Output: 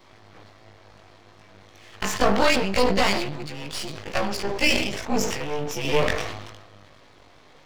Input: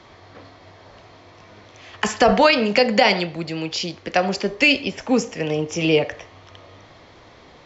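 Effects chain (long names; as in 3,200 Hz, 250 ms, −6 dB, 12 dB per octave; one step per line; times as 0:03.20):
every overlapping window played backwards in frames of 40 ms
half-wave rectification
level that may fall only so fast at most 46 dB per second
level +1.5 dB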